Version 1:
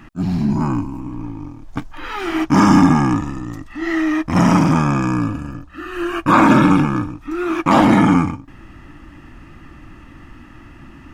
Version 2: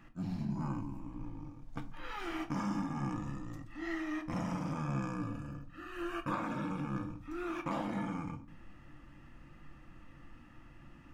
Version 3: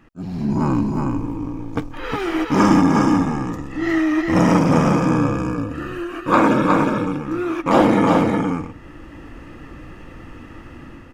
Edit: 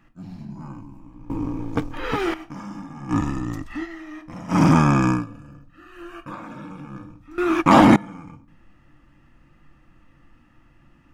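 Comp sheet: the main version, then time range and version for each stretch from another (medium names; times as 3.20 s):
2
1.30–2.34 s: from 3
3.13–3.82 s: from 1, crossfade 0.10 s
4.56–5.18 s: from 1, crossfade 0.16 s
7.38–7.96 s: from 1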